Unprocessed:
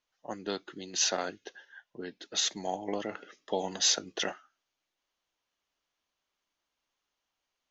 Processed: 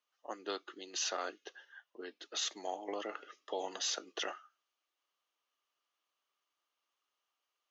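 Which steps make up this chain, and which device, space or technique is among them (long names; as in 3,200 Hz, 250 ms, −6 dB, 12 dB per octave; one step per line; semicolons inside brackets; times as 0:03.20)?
laptop speaker (high-pass filter 310 Hz 24 dB per octave; parametric band 1,200 Hz +11 dB 0.2 octaves; parametric band 2,900 Hz +4.5 dB 0.27 octaves; brickwall limiter −21.5 dBFS, peak gain reduction 7.5 dB)
level −4.5 dB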